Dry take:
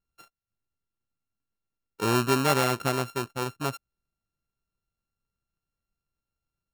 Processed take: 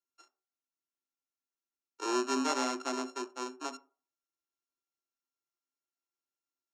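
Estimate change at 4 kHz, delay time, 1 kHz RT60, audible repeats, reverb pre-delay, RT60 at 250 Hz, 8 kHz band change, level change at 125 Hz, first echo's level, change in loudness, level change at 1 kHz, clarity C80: -7.0 dB, no echo, 0.40 s, no echo, 3 ms, 0.35 s, -4.5 dB, under -40 dB, no echo, -7.5 dB, -7.0 dB, 24.0 dB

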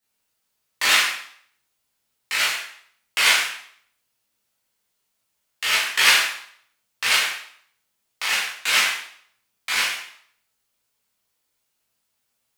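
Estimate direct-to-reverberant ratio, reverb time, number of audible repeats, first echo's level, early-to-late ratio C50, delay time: -8.0 dB, 0.60 s, no echo, no echo, 3.0 dB, no echo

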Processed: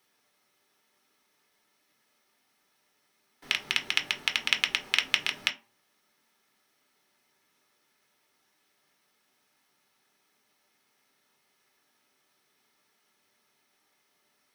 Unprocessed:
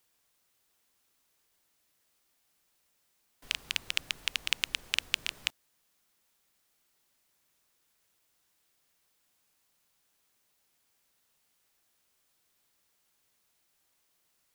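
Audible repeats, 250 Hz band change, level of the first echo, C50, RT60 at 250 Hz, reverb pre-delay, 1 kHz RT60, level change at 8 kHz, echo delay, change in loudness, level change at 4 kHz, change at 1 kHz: no echo, +8.5 dB, no echo, 14.5 dB, 0.40 s, 3 ms, 0.45 s, +0.5 dB, no echo, +5.0 dB, +4.5 dB, +8.5 dB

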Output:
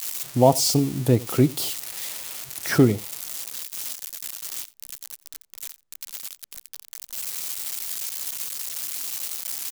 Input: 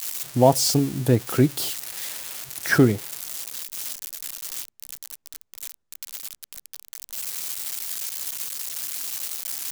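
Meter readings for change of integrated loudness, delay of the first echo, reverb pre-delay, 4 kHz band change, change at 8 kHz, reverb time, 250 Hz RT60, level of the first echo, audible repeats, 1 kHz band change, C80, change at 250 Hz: 0.0 dB, 87 ms, no reverb, 0.0 dB, 0.0 dB, no reverb, no reverb, -22.0 dB, 1, -0.5 dB, no reverb, 0.0 dB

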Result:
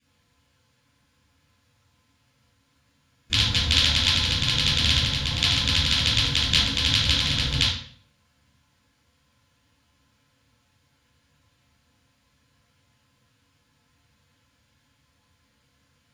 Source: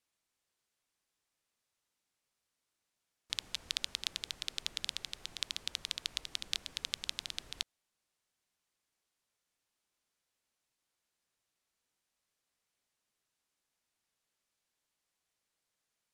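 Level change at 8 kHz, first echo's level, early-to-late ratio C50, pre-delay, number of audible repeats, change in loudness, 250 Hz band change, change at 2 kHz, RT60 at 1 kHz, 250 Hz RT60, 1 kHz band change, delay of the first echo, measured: +12.5 dB, no echo, 0.5 dB, 13 ms, no echo, +18.5 dB, +29.0 dB, +19.5 dB, 0.50 s, 0.60 s, +21.5 dB, no echo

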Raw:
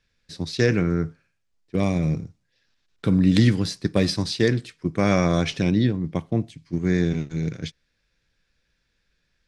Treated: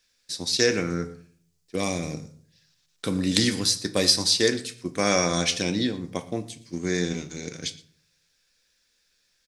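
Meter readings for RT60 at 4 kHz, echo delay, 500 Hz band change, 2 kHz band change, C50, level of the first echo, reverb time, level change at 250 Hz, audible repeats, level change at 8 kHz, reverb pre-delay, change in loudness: 0.35 s, 117 ms, -1.5 dB, +0.5 dB, 14.5 dB, -21.0 dB, 0.50 s, -6.0 dB, 1, +12.0 dB, 4 ms, -2.0 dB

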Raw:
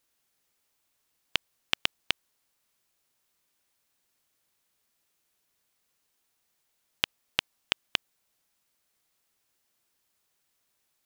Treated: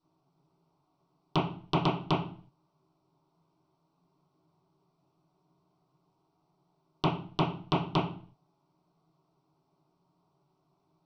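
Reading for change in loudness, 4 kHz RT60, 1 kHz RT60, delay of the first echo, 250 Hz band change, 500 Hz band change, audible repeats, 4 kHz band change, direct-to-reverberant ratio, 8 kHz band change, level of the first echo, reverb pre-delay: +0.5 dB, 0.40 s, 0.45 s, no echo, +19.0 dB, +13.0 dB, no echo, -9.0 dB, -11.0 dB, under -10 dB, no echo, 3 ms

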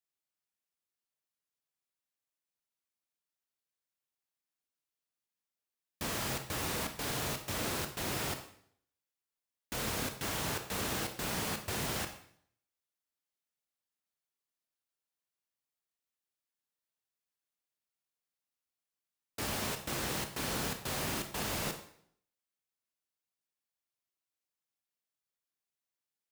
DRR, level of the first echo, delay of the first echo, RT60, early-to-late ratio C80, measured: 6.0 dB, no echo, no echo, 0.65 s, 12.0 dB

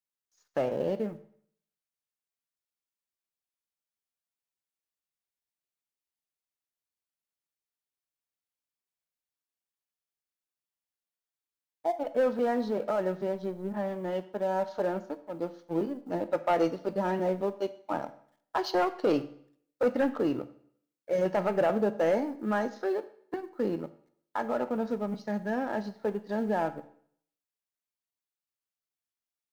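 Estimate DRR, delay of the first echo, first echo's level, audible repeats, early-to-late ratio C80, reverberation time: 11.0 dB, no echo, no echo, no echo, 18.0 dB, 0.60 s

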